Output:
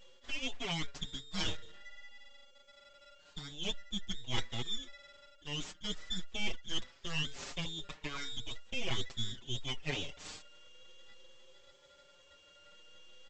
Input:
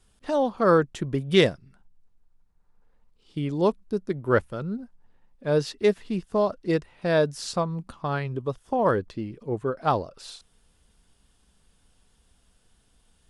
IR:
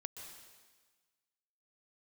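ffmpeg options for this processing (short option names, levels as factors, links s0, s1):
-filter_complex "[0:a]afftfilt=real='real(if(between(b,1,1012),(2*floor((b-1)/92)+1)*92-b,b),0)':imag='imag(if(between(b,1,1012),(2*floor((b-1)/92)+1)*92-b,b),0)*if(between(b,1,1012),-1,1)':win_size=2048:overlap=0.75,aeval=exprs='val(0)+0.00251*sin(2*PI*1400*n/s)':c=same,equalizer=f=5500:w=1.8:g=-5,areverse,acompressor=threshold=0.0224:ratio=4,areverse,highshelf=f=3800:g=6,bandreject=f=60:t=h:w=6,bandreject=f=120:t=h:w=6,bandreject=f=180:t=h:w=6,bandreject=f=240:t=h:w=6,bandreject=f=300:t=h:w=6,bandreject=f=360:t=h:w=6,bandreject=f=420:t=h:w=6,aecho=1:1:7.4:0.51,aresample=16000,aeval=exprs='abs(val(0))':c=same,aresample=44100,asplit=2[s0][s1];[s1]adelay=5.6,afreqshift=0.44[s2];[s0][s2]amix=inputs=2:normalize=1,volume=1.19"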